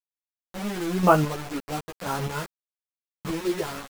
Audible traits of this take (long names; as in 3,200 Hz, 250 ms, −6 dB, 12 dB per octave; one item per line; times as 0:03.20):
chopped level 0.97 Hz, depth 65%, duty 20%
a quantiser's noise floor 6 bits, dither none
a shimmering, thickened sound